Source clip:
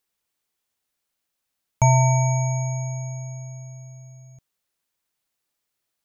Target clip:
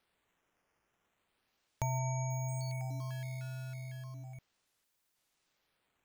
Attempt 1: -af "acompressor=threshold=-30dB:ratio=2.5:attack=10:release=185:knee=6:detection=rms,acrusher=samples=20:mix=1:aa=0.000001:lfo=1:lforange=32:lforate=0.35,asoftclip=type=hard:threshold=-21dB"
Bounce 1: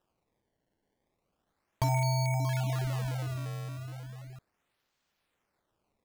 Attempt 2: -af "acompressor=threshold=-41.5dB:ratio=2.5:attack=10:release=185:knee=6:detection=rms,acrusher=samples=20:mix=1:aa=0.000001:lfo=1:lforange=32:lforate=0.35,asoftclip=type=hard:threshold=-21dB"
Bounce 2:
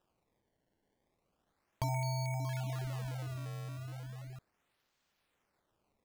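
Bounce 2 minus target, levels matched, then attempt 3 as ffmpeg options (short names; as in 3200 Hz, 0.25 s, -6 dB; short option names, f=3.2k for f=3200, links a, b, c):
decimation with a swept rate: distortion +6 dB
-af "acompressor=threshold=-41.5dB:ratio=2.5:attack=10:release=185:knee=6:detection=rms,acrusher=samples=6:mix=1:aa=0.000001:lfo=1:lforange=9.6:lforate=0.35,asoftclip=type=hard:threshold=-21dB"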